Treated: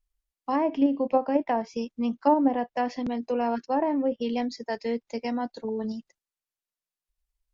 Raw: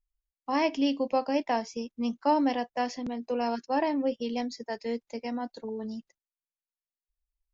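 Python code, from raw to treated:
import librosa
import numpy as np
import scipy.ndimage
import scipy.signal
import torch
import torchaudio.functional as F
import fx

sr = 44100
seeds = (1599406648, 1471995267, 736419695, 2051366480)

p1 = fx.env_lowpass_down(x, sr, base_hz=940.0, full_db=-21.5)
p2 = fx.level_steps(p1, sr, step_db=12)
y = p1 + (p2 * 10.0 ** (-0.5 / 20.0))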